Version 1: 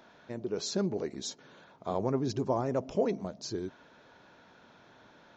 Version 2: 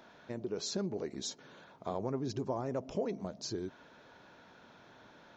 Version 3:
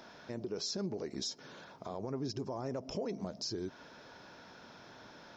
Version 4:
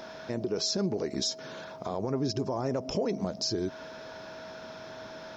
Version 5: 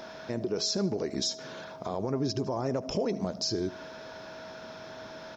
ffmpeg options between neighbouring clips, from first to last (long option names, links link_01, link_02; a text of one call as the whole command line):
ffmpeg -i in.wav -af "acompressor=threshold=-36dB:ratio=2" out.wav
ffmpeg -i in.wav -af "equalizer=frequency=5200:width=4.5:gain=12,alimiter=level_in=8.5dB:limit=-24dB:level=0:latency=1:release=166,volume=-8.5dB,volume=3.5dB" out.wav
ffmpeg -i in.wav -af "aeval=exprs='val(0)+0.00251*sin(2*PI*640*n/s)':channel_layout=same,volume=8dB" out.wav
ffmpeg -i in.wav -af "aecho=1:1:76|152|228:0.119|0.0475|0.019" out.wav